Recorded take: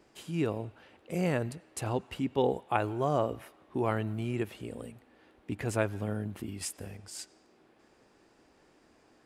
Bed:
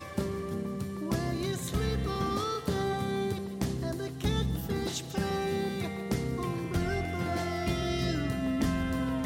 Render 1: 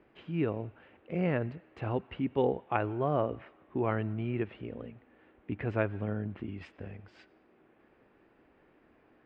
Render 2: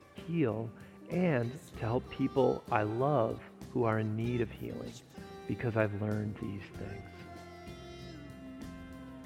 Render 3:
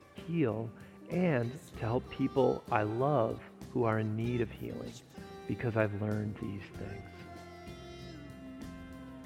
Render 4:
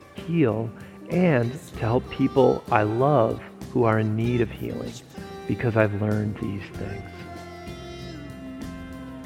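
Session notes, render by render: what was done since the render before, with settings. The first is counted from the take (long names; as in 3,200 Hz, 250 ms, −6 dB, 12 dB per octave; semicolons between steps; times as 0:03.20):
low-pass filter 2,700 Hz 24 dB per octave; parametric band 860 Hz −2.5 dB
mix in bed −17 dB
no processing that can be heard
level +10 dB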